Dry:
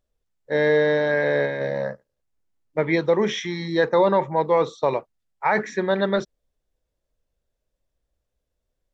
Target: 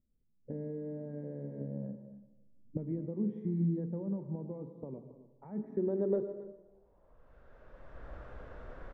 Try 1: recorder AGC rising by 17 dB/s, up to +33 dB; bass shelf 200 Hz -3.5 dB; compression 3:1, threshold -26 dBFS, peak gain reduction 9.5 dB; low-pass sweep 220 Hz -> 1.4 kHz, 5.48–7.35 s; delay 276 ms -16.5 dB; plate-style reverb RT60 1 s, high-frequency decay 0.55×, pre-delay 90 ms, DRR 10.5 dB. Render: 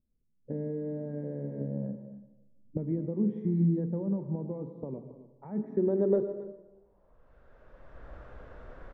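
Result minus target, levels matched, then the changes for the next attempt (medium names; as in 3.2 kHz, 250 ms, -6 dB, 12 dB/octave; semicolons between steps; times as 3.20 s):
compression: peak gain reduction -5.5 dB
change: compression 3:1, threshold -34 dBFS, peak gain reduction 14.5 dB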